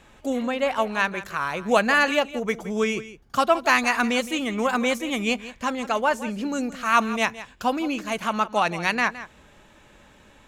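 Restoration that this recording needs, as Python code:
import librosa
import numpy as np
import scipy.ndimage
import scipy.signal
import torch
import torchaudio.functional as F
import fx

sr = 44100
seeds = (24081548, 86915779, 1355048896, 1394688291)

y = fx.fix_echo_inverse(x, sr, delay_ms=166, level_db=-15.0)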